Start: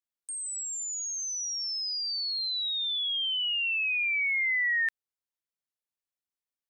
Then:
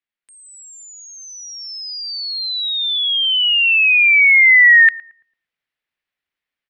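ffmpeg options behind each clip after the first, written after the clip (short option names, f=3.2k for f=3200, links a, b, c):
-filter_complex "[0:a]firequalizer=gain_entry='entry(1000,0);entry(1900,10);entry(6600,-13)':delay=0.05:min_phase=1,dynaudnorm=f=300:g=3:m=7dB,asplit=2[a][b];[b]adelay=112,lowpass=f=870:p=1,volume=-14.5dB,asplit=2[c][d];[d]adelay=112,lowpass=f=870:p=1,volume=0.5,asplit=2[e][f];[f]adelay=112,lowpass=f=870:p=1,volume=0.5,asplit=2[g][h];[h]adelay=112,lowpass=f=870:p=1,volume=0.5,asplit=2[i][j];[j]adelay=112,lowpass=f=870:p=1,volume=0.5[k];[a][c][e][g][i][k]amix=inputs=6:normalize=0,volume=2dB"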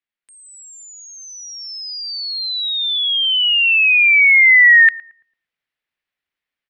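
-af anull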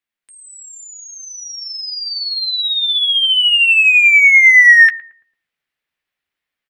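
-filter_complex "[0:a]asplit=2[a][b];[b]asoftclip=type=tanh:threshold=-13.5dB,volume=-8dB[c];[a][c]amix=inputs=2:normalize=0,asplit=2[d][e];[e]adelay=13,volume=-10.5dB[f];[d][f]amix=inputs=2:normalize=0"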